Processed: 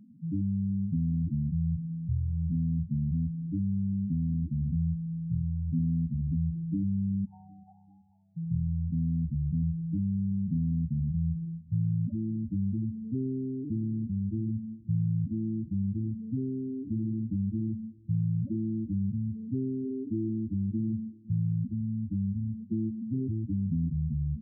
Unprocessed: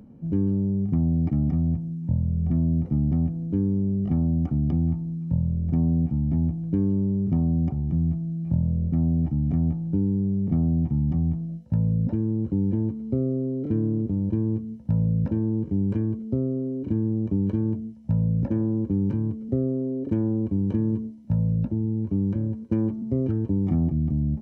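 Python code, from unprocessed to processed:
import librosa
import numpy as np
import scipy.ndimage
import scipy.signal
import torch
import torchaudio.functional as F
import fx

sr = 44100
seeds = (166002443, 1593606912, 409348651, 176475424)

y = fx.ellip_highpass(x, sr, hz=790.0, order=4, stop_db=40, at=(7.25, 8.37))
y = fx.spec_topn(y, sr, count=4)
y = fx.echo_feedback(y, sr, ms=383, feedback_pct=47, wet_db=-24)
y = F.gain(torch.from_numpy(y), -4.5).numpy()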